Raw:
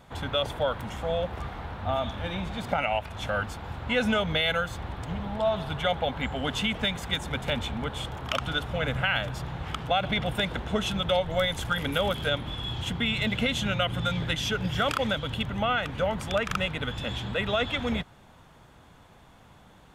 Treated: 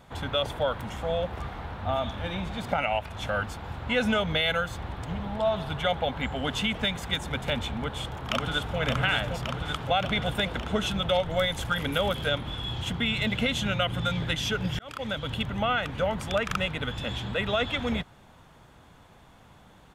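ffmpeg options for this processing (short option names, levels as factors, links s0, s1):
-filter_complex "[0:a]asplit=2[s0][s1];[s1]afade=t=in:st=7.72:d=0.01,afade=t=out:st=8.79:d=0.01,aecho=0:1:570|1140|1710|2280|2850|3420|3990|4560|5130|5700|6270|6840:0.668344|0.467841|0.327489|0.229242|0.160469|0.112329|0.07863|0.055041|0.0385287|0.0269701|0.0188791|0.0132153[s2];[s0][s2]amix=inputs=2:normalize=0,asplit=2[s3][s4];[s3]atrim=end=14.79,asetpts=PTS-STARTPTS,afade=t=out:st=14.786:d=0.004:c=hsin[s5];[s4]atrim=start=14.79,asetpts=PTS-STARTPTS,afade=t=in:d=0.5[s6];[s5][s6]concat=n=2:v=0:a=1"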